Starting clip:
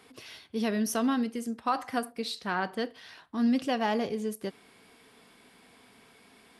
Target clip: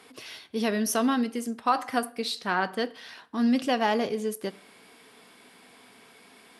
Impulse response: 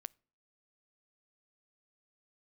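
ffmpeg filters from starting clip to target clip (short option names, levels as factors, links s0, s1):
-filter_complex "[0:a]highpass=f=220:p=1[s0];[1:a]atrim=start_sample=2205,asetrate=23814,aresample=44100[s1];[s0][s1]afir=irnorm=-1:irlink=0,volume=2.11"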